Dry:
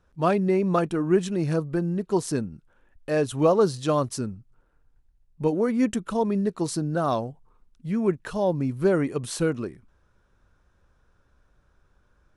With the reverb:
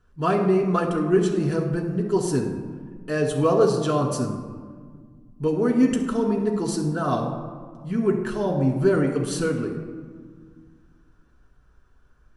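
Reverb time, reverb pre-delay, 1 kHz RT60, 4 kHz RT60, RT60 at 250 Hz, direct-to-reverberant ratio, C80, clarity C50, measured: 1.7 s, 3 ms, 1.7 s, 0.85 s, 2.7 s, -0.5 dB, 7.5 dB, 5.5 dB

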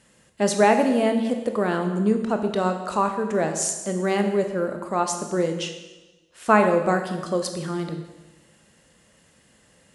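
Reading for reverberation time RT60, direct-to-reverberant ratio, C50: 1.1 s, 5.0 dB, 7.5 dB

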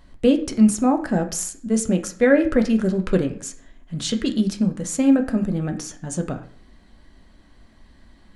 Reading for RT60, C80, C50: 0.50 s, 16.0 dB, 12.5 dB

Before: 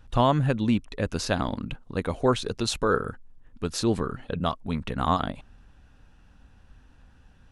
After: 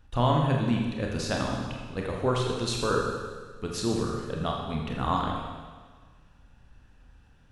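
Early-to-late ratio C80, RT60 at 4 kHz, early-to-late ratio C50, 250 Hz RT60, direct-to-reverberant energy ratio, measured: 3.5 dB, 1.5 s, 2.0 dB, 1.6 s, -1.0 dB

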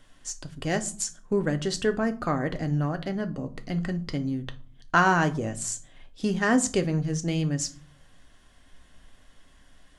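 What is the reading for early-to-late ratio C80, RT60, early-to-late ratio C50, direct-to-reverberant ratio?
22.5 dB, 0.45 s, 17.5 dB, 7.0 dB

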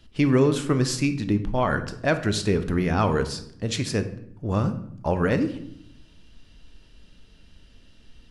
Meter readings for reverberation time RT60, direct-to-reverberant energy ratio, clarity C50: 0.70 s, 9.0 dB, 12.0 dB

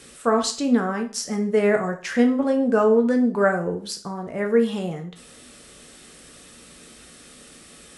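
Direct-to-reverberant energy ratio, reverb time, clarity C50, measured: 4.0 dB, 0.40 s, 11.0 dB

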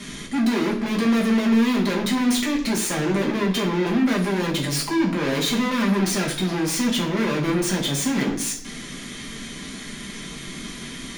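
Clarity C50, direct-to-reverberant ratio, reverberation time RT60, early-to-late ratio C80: 9.0 dB, -2.0 dB, 0.65 s, 12.0 dB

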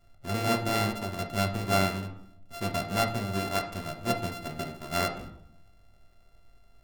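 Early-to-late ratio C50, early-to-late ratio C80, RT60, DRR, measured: 9.5 dB, 13.0 dB, 0.70 s, 2.5 dB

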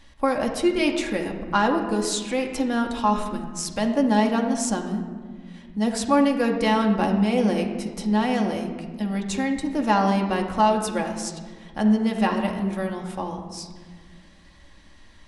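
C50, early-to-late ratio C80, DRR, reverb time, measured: 6.5 dB, 8.0 dB, 1.5 dB, 1.7 s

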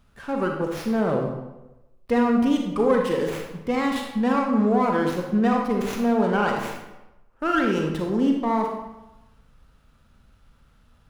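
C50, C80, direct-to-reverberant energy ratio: 3.0 dB, 6.0 dB, 1.0 dB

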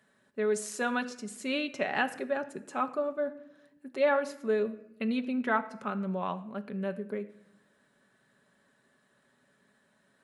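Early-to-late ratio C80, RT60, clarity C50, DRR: 17.5 dB, 0.85 s, 15.0 dB, 6.0 dB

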